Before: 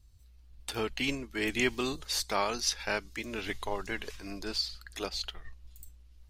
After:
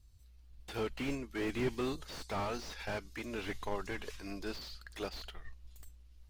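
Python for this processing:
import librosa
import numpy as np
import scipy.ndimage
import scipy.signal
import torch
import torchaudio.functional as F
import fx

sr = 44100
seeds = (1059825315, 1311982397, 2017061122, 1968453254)

y = fx.slew_limit(x, sr, full_power_hz=25.0)
y = y * 10.0 ** (-2.0 / 20.0)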